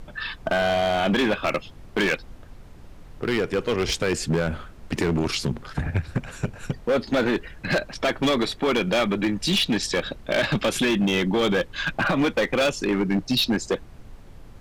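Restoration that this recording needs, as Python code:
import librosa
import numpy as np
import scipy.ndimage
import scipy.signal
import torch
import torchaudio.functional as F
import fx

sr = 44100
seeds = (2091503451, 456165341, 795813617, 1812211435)

y = fx.fix_declip(x, sr, threshold_db=-17.0)
y = fx.noise_reduce(y, sr, print_start_s=2.36, print_end_s=2.86, reduce_db=27.0)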